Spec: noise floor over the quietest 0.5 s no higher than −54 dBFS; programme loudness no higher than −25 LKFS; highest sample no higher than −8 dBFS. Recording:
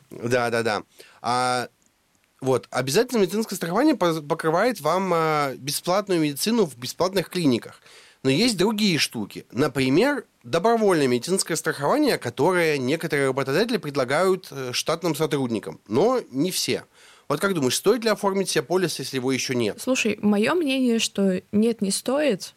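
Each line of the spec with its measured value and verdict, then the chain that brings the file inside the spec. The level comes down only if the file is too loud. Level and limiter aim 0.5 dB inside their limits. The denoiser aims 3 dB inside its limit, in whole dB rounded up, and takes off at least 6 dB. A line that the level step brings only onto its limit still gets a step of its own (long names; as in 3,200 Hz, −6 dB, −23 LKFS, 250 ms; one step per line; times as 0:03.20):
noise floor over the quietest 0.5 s −65 dBFS: in spec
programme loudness −23.0 LKFS: out of spec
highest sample −9.5 dBFS: in spec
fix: level −2.5 dB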